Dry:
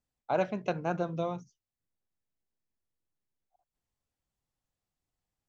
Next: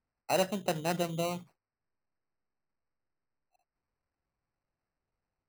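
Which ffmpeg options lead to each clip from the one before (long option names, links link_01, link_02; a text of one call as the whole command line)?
ffmpeg -i in.wav -af "acrusher=samples=13:mix=1:aa=0.000001" out.wav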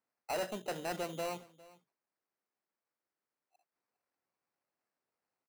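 ffmpeg -i in.wav -af "highpass=290,asoftclip=type=tanh:threshold=-31dB,aecho=1:1:405:0.0891" out.wav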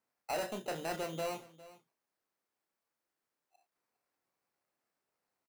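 ffmpeg -i in.wav -filter_complex "[0:a]asplit=2[link_01][link_02];[link_02]acompressor=threshold=-44dB:ratio=6,volume=-2.5dB[link_03];[link_01][link_03]amix=inputs=2:normalize=0,asplit=2[link_04][link_05];[link_05]adelay=31,volume=-8dB[link_06];[link_04][link_06]amix=inputs=2:normalize=0,volume=-2.5dB" out.wav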